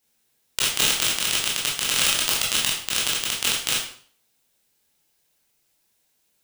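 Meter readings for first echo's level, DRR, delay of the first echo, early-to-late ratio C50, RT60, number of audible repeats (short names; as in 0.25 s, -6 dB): none, -5.5 dB, none, 4.0 dB, 0.50 s, none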